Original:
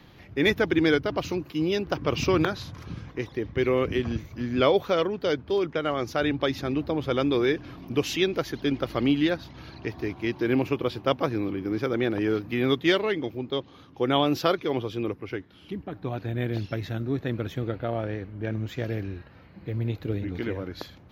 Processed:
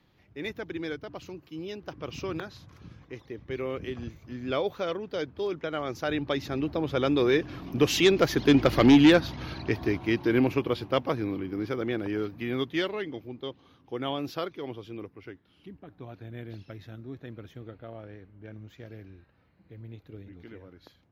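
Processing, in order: Doppler pass-by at 8.86 s, 7 m/s, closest 4.6 m; sine folder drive 5 dB, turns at -11.5 dBFS

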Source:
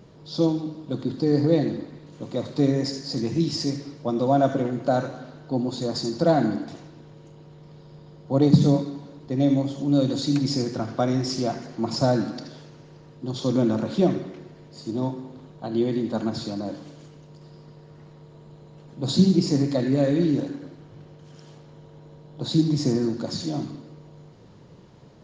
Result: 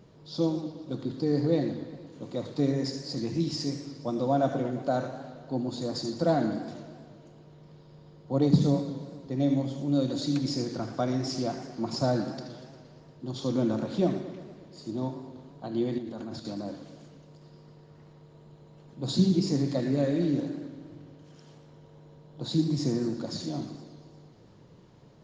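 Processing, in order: 15.98–16.45 s: level held to a coarse grid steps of 11 dB; modulated delay 117 ms, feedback 68%, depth 150 cents, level -15 dB; trim -5.5 dB

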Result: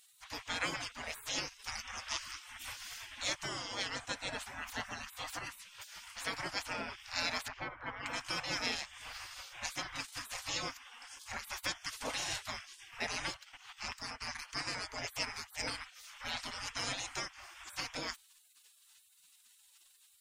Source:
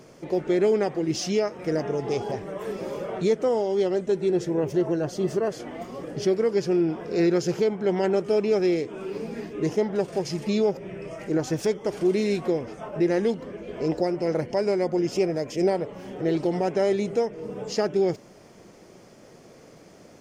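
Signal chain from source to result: 7.48–8.06 s: low-pass 1.4 kHz 12 dB/octave; spectral gate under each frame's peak -30 dB weak; 13.33–14.42 s: transient shaper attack 0 dB, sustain -8 dB; trim +6 dB

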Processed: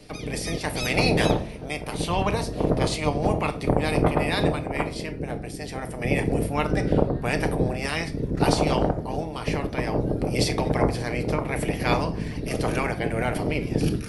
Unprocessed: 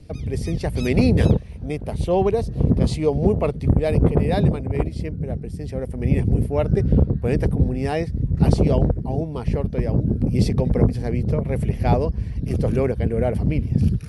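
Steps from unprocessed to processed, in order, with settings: spectral peaks clipped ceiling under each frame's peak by 23 dB; on a send: reverberation RT60 0.50 s, pre-delay 7 ms, DRR 7 dB; on the sum: trim -5.5 dB

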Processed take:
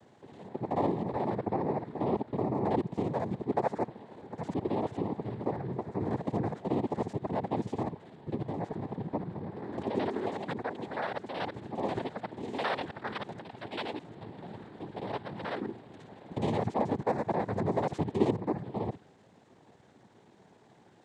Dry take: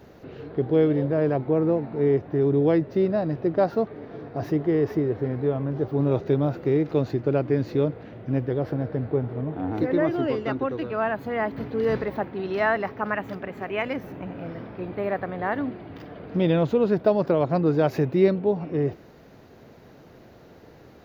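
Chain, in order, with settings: time reversed locally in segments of 54 ms; noise-vocoded speech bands 6; trim -8.5 dB

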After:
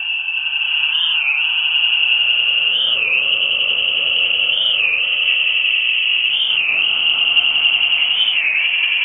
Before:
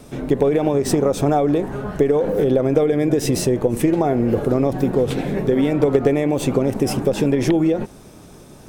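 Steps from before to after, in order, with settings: reverse spectral sustain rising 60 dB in 0.50 s; peak limiter -12 dBFS, peak gain reduction 9 dB; Paulstretch 7×, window 0.05 s, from 2.87 s; vibrato 11 Hz 33 cents; rotary cabinet horn 0.9 Hz, later 5 Hz, at 3.08 s; chorus 1.1 Hz, delay 17 ms, depth 6.4 ms; echo with a slow build-up 88 ms, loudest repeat 5, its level -6 dB; speed mistake 25 fps video run at 24 fps; frequency inversion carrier 3.1 kHz; warped record 33 1/3 rpm, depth 160 cents; trim +3.5 dB

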